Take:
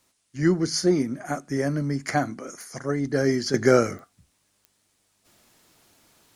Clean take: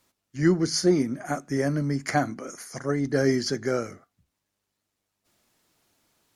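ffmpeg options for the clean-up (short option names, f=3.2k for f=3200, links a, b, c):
-af "adeclick=t=4,agate=range=-21dB:threshold=-61dB,asetnsamples=n=441:p=0,asendcmd='3.54 volume volume -9dB',volume=0dB"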